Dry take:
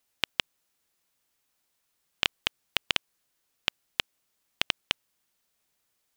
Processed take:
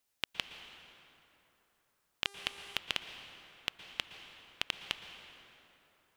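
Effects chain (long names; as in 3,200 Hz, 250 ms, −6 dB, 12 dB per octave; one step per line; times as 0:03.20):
brickwall limiter −6.5 dBFS, peak gain reduction 4 dB
dense smooth reverb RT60 3.4 s, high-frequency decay 0.6×, pre-delay 105 ms, DRR 8 dB
0:02.25–0:02.77: hum with harmonics 400 Hz, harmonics 29, −53 dBFS −3 dB per octave
level −4 dB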